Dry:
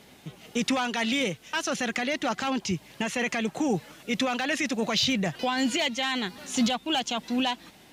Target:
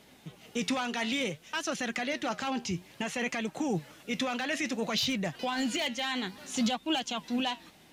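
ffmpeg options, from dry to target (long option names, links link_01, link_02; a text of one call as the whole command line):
ffmpeg -i in.wav -filter_complex "[0:a]flanger=delay=3.1:depth=9.6:regen=76:speed=0.58:shape=sinusoidal,asettb=1/sr,asplit=3[link_01][link_02][link_03];[link_01]atrim=end=4.984[link_04];[link_02]atrim=start=4.98:end=6.07,asetpts=PTS-STARTPTS,afade=type=in:duration=0.004:curve=qsin,afade=type=out:start_time=1.086:duration=0.004:curve=qsin,asoftclip=type=hard:threshold=-24dB[link_05];[link_03]atrim=start=6.066[link_06];[link_04][link_05]acrossfade=duration=0.004:curve1=hsin:curve2=qsin[link_07];[link_07][link_06]acrossfade=duration=0.004:curve1=qsin:curve2=hsin" out.wav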